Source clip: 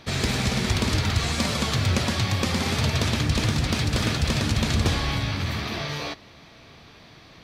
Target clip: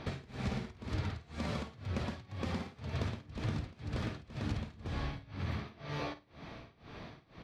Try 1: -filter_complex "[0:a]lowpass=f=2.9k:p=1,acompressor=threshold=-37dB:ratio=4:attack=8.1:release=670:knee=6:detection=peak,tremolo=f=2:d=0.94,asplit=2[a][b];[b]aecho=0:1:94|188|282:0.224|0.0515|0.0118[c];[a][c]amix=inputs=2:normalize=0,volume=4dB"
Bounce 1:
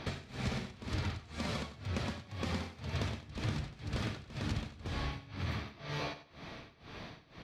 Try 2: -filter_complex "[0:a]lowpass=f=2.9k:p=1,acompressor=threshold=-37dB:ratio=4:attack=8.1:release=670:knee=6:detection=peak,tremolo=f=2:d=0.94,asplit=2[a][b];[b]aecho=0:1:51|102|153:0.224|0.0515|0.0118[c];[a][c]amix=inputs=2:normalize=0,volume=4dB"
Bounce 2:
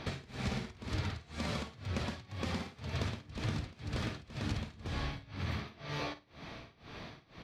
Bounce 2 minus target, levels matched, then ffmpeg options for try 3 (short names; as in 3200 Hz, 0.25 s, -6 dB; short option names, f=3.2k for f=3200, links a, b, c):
4000 Hz band +4.0 dB
-filter_complex "[0:a]lowpass=f=1.4k:p=1,acompressor=threshold=-37dB:ratio=4:attack=8.1:release=670:knee=6:detection=peak,tremolo=f=2:d=0.94,asplit=2[a][b];[b]aecho=0:1:51|102|153:0.224|0.0515|0.0118[c];[a][c]amix=inputs=2:normalize=0,volume=4dB"